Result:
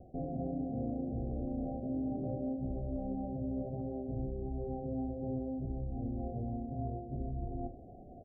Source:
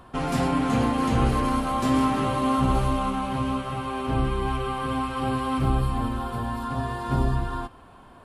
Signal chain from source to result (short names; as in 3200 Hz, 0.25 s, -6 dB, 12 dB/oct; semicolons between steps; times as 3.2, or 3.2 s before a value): Chebyshev low-pass 760 Hz, order 10; reverse; compressor 6:1, threshold -35 dBFS, peak gain reduction 16 dB; reverse; early reflections 42 ms -11.5 dB, 74 ms -17 dB